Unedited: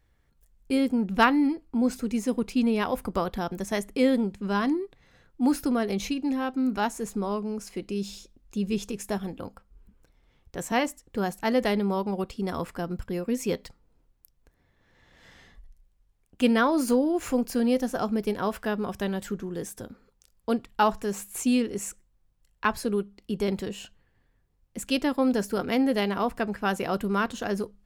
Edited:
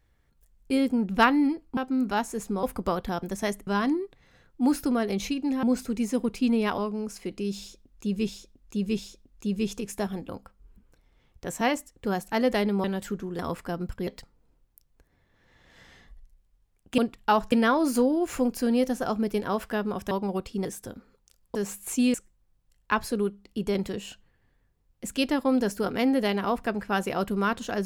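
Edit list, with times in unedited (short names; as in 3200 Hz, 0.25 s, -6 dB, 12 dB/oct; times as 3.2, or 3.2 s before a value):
1.77–2.92 swap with 6.43–7.29
3.96–4.47 cut
8.1–8.8 loop, 3 plays
11.95–12.49 swap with 19.04–19.59
13.17–13.54 cut
20.49–21.03 move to 16.45
21.62–21.87 cut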